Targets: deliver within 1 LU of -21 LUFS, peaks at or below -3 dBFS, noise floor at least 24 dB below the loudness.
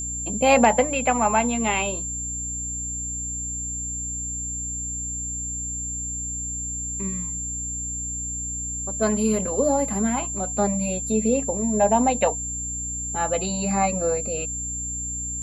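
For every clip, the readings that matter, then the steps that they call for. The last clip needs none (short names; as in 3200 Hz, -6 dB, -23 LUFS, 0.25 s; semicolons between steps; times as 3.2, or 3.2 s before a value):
hum 60 Hz; harmonics up to 300 Hz; hum level -34 dBFS; steady tone 7300 Hz; tone level -28 dBFS; loudness -24.0 LUFS; peak -5.0 dBFS; loudness target -21.0 LUFS
-> de-hum 60 Hz, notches 5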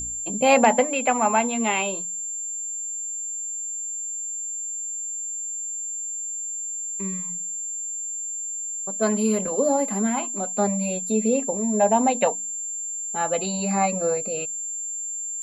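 hum none; steady tone 7300 Hz; tone level -28 dBFS
-> notch 7300 Hz, Q 30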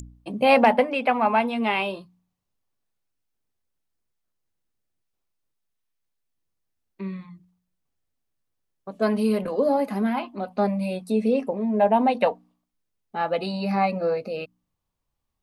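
steady tone none; loudness -23.0 LUFS; peak -5.5 dBFS; loudness target -21.0 LUFS
-> gain +2 dB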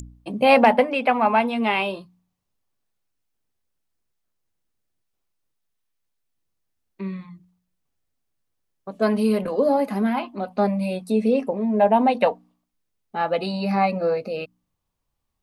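loudness -21.0 LUFS; peak -3.5 dBFS; noise floor -77 dBFS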